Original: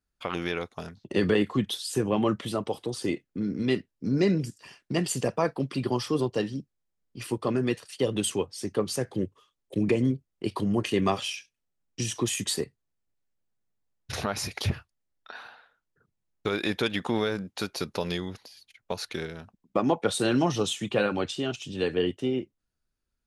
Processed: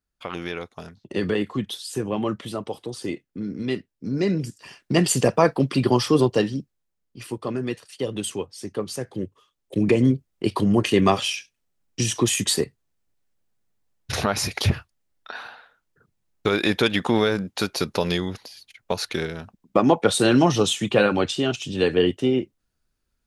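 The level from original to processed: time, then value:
0:04.13 −0.5 dB
0:05.03 +8.5 dB
0:06.27 +8.5 dB
0:07.25 −1 dB
0:09.11 −1 dB
0:10.09 +7 dB

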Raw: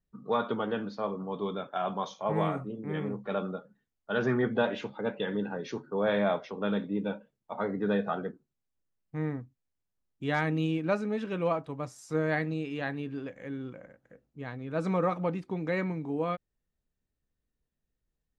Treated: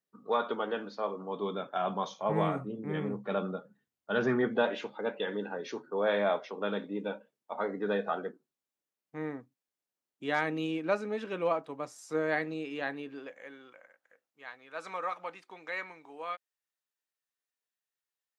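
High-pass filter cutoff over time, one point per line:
0:01.12 340 Hz
0:01.88 120 Hz
0:04.12 120 Hz
0:04.76 310 Hz
0:12.92 310 Hz
0:13.82 980 Hz

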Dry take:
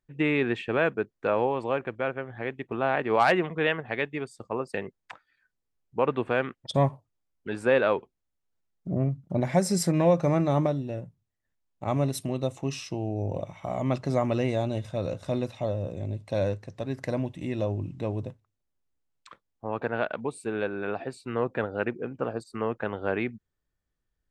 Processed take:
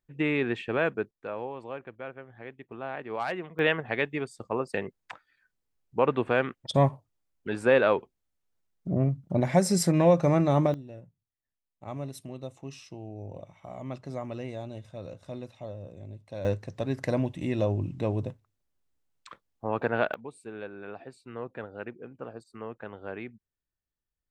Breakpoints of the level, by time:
−2 dB
from 0:01.11 −10.5 dB
from 0:03.59 +1 dB
from 0:10.74 −10.5 dB
from 0:16.45 +2 dB
from 0:20.14 −10 dB

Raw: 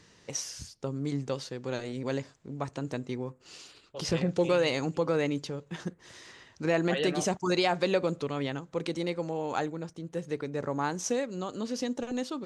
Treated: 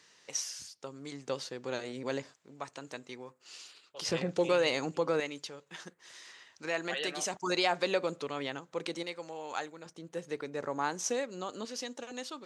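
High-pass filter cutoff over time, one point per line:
high-pass filter 6 dB per octave
1,100 Hz
from 0:01.28 390 Hz
from 0:02.34 1,200 Hz
from 0:04.06 380 Hz
from 0:05.20 1,300 Hz
from 0:07.33 570 Hz
from 0:09.03 1,400 Hz
from 0:09.86 510 Hz
from 0:11.65 1,100 Hz

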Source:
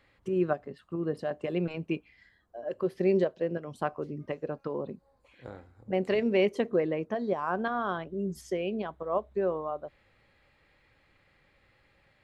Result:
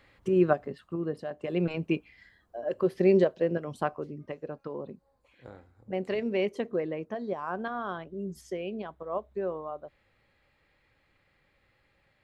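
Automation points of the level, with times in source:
0:00.69 +4.5 dB
0:01.32 −4.5 dB
0:01.66 +3.5 dB
0:03.71 +3.5 dB
0:04.19 −3.5 dB

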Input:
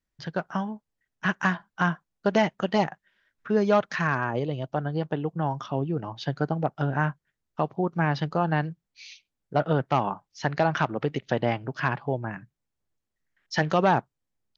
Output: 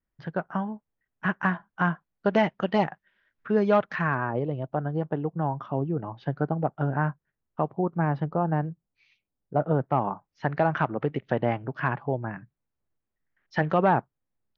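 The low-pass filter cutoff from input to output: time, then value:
0:01.66 1,900 Hz
0:02.43 3,100 Hz
0:03.71 3,100 Hz
0:04.34 1,500 Hz
0:07.60 1,500 Hz
0:08.48 1,000 Hz
0:09.67 1,000 Hz
0:10.59 2,000 Hz

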